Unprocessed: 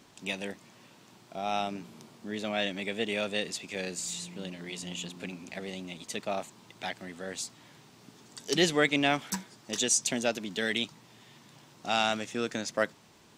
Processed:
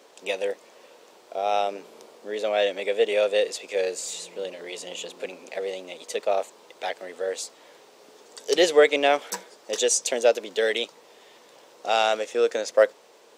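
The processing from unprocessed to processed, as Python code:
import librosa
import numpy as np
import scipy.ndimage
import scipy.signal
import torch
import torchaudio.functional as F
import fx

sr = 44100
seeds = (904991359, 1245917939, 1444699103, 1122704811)

y = fx.highpass_res(x, sr, hz=490.0, q=4.6)
y = y * librosa.db_to_amplitude(2.5)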